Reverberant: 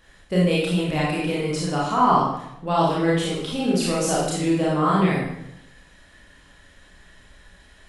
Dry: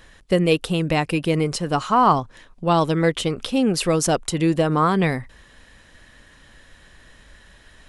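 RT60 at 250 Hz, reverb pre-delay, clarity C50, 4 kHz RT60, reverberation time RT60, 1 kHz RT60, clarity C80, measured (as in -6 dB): 0.90 s, 25 ms, -0.5 dB, 0.70 s, 0.80 s, 0.75 s, 4.0 dB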